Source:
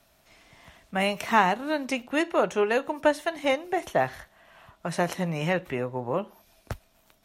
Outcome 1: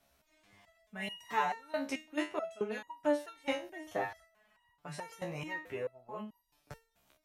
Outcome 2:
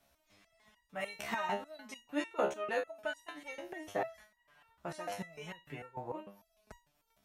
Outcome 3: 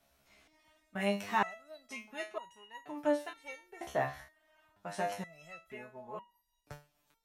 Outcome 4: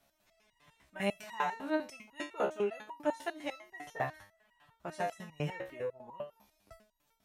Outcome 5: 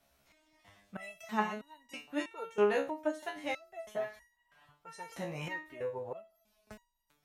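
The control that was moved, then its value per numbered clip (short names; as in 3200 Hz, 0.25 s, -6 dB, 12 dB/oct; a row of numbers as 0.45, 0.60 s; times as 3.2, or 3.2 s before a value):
stepped resonator, rate: 4.6, 6.7, 2.1, 10, 3.1 Hz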